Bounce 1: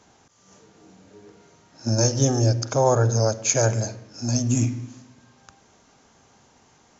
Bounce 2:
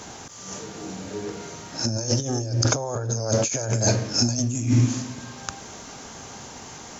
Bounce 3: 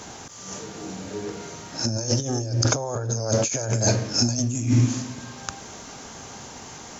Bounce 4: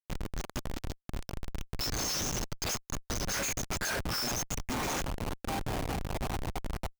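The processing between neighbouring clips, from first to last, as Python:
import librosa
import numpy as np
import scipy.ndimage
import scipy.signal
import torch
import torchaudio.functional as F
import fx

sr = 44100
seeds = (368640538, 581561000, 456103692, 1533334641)

y1 = fx.high_shelf(x, sr, hz=5300.0, db=6.5)
y1 = fx.over_compress(y1, sr, threshold_db=-31.0, ratio=-1.0)
y1 = F.gain(torch.from_numpy(y1), 7.0).numpy()
y2 = y1
y3 = fx.spec_dropout(y2, sr, seeds[0], share_pct=46)
y3 = fx.filter_sweep_highpass(y3, sr, from_hz=3400.0, to_hz=640.0, start_s=2.19, end_s=5.43, q=2.0)
y3 = fx.schmitt(y3, sr, flips_db=-34.5)
y3 = F.gain(torch.from_numpy(y3), 1.5).numpy()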